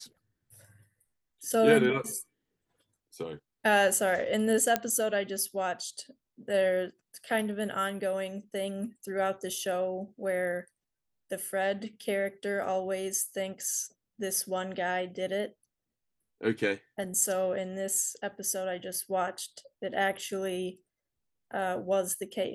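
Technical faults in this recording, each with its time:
0:04.76: click −10 dBFS

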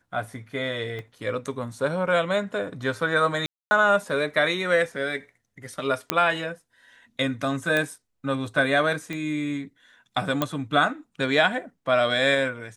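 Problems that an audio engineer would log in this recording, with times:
0:00.99: click −24 dBFS
0:03.46–0:03.71: drop-out 250 ms
0:06.10: click −4 dBFS
0:07.77: click −11 dBFS
0:09.13: click −18 dBFS
0:10.42: click −9 dBFS

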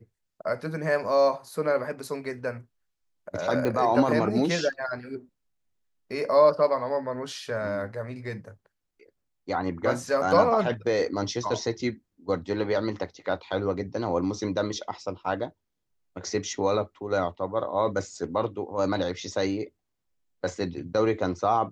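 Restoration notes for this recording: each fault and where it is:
0:03.65: click −16 dBFS

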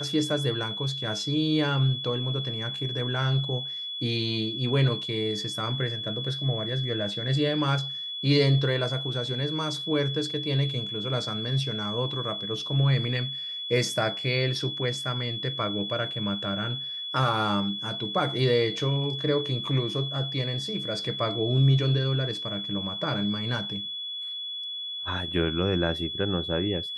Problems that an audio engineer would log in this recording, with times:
whistle 3,400 Hz −32 dBFS

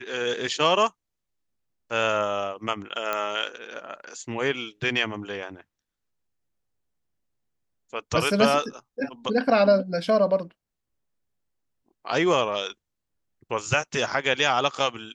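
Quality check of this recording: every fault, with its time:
0:03.13: click −12 dBFS

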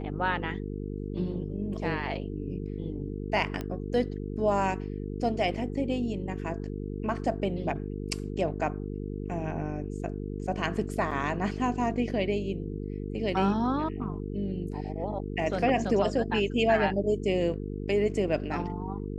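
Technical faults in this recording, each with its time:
mains buzz 50 Hz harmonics 9 −35 dBFS
0:03.61: click −21 dBFS
0:11.11: drop-out 4.2 ms

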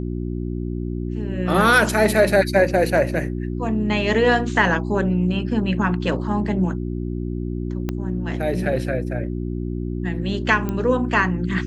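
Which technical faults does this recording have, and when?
mains hum 60 Hz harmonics 6 −26 dBFS
0:07.89: click −12 dBFS
0:10.69: click −13 dBFS

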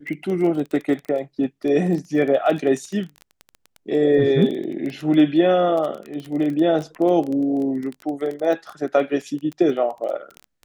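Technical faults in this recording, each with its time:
surface crackle 15 per second −26 dBFS

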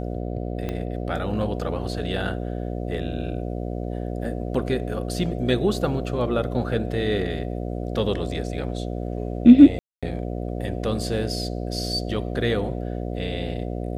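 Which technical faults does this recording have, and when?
mains buzz 60 Hz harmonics 12 −29 dBFS
0:00.69: click −16 dBFS
0:09.79–0:10.03: drop-out 236 ms

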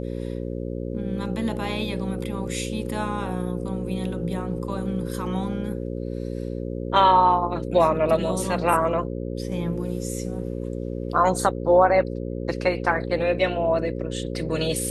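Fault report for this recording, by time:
mains buzz 60 Hz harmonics 9 −30 dBFS

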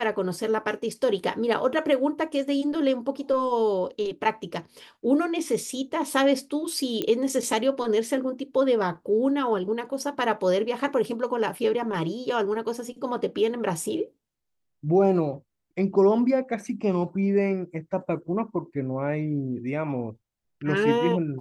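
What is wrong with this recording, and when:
0:07.02: click −14 dBFS

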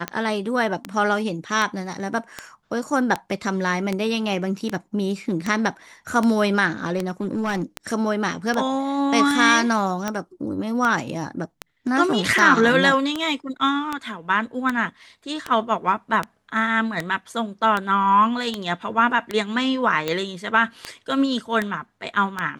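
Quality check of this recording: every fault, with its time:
scratch tick 78 rpm −10 dBFS
0:06.97–0:07.63: clipping −19.5 dBFS

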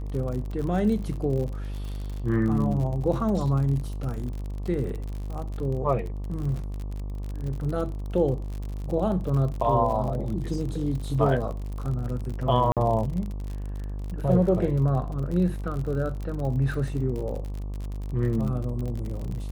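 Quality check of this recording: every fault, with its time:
mains buzz 50 Hz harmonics 24 −32 dBFS
surface crackle 49 per second −32 dBFS
0:12.72–0:12.77: drop-out 47 ms

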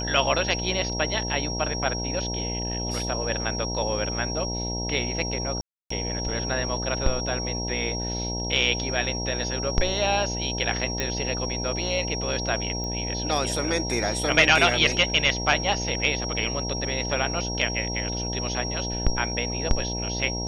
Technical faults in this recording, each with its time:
mains buzz 60 Hz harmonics 16 −31 dBFS
whistle 5,600 Hz −31 dBFS
0:05.61–0:05.90: drop-out 294 ms
0:11.00: click −11 dBFS
0:12.84: click −20 dBFS

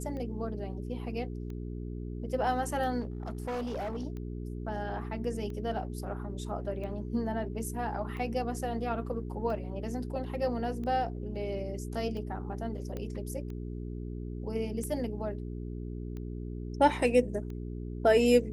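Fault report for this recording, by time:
mains hum 60 Hz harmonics 7 −38 dBFS
scratch tick 45 rpm −31 dBFS
0:03.00–0:04.05: clipping −31.5 dBFS
0:12.97: click −25 dBFS

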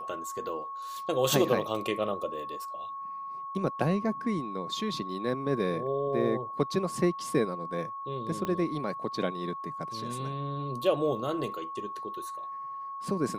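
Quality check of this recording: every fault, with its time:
whistle 1,100 Hz −36 dBFS
0:08.45: click −19 dBFS

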